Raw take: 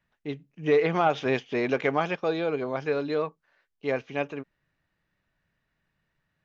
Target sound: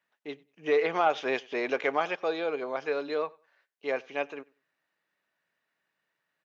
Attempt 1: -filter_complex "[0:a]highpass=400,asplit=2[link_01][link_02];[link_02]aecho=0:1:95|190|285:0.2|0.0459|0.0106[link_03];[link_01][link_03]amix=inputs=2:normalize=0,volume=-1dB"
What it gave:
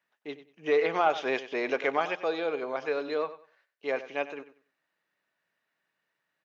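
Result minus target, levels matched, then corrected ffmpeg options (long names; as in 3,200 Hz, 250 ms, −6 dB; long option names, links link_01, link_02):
echo-to-direct +11 dB
-filter_complex "[0:a]highpass=400,asplit=2[link_01][link_02];[link_02]aecho=0:1:95|190:0.0562|0.0129[link_03];[link_01][link_03]amix=inputs=2:normalize=0,volume=-1dB"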